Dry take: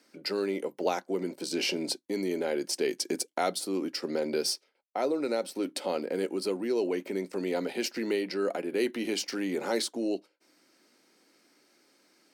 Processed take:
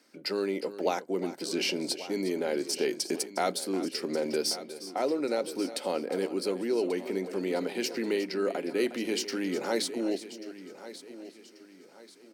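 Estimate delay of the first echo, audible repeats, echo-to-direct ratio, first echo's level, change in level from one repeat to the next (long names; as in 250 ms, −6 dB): 359 ms, 5, −11.0 dB, −14.0 dB, repeats not evenly spaced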